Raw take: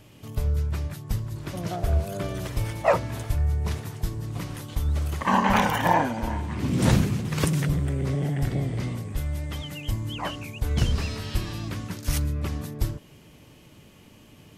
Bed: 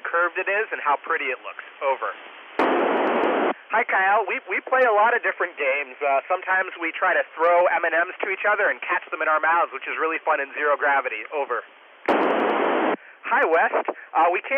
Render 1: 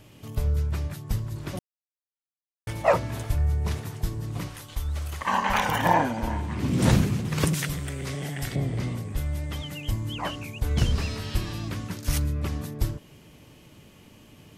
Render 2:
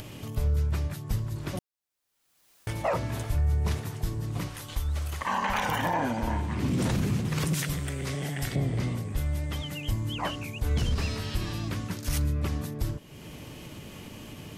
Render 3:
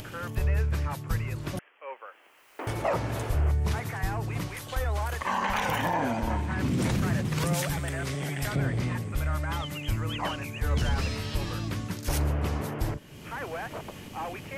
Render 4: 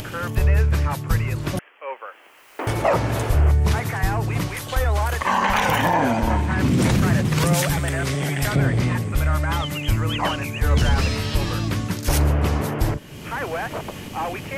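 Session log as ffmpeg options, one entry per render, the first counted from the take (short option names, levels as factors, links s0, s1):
-filter_complex "[0:a]asettb=1/sr,asplit=3[s0][s1][s2];[s0]atrim=end=4.494[s3];[s1]atrim=start=4.49:end=5.68,asetpts=PTS-STARTPTS,afade=t=in:d=0.004:c=qsin,afade=t=out:st=1.186:d=0.004:c=qsin,equalizer=f=210:w=0.44:g=-10.5[s4];[s2]atrim=start=5.676[s5];[s3][s4]acrossfade=d=0.004:c1=hsin:c2=qsin[s6];[s6][s5]acrossfade=d=0.004:c1=qsin:c2=hsin,asettb=1/sr,asplit=3[s7][s8][s9];[s7]atrim=end=7.544[s10];[s8]atrim=start=7.54:end=8.56,asetpts=PTS-STARTPTS,afade=t=in:d=0.004:c=qsin,afade=t=out:st=1.016:d=0.004:c=qsin,tiltshelf=f=1100:g=-7.5[s11];[s9]atrim=start=8.556[s12];[s10][s11]acrossfade=d=0.004:c1=hsin:c2=qsin[s13];[s13][s12]acrossfade=d=0.004:c1=qsin:c2=hsin,asplit=3[s14][s15][s16];[s14]atrim=end=1.59,asetpts=PTS-STARTPTS,afade=t=out:st=1.586:d=0.004:c=hsin[s17];[s15]atrim=start=1.59:end=2.67,asetpts=PTS-STARTPTS,volume=0[s18];[s16]atrim=start=2.67,asetpts=PTS-STARTPTS,afade=t=in:d=0.004:c=hsin[s19];[s17][s18][s19]concat=n=3:v=0:a=1"
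-af "alimiter=limit=0.119:level=0:latency=1:release=50,acompressor=mode=upward:threshold=0.0224:ratio=2.5"
-filter_complex "[1:a]volume=0.133[s0];[0:a][s0]amix=inputs=2:normalize=0"
-af "volume=2.66"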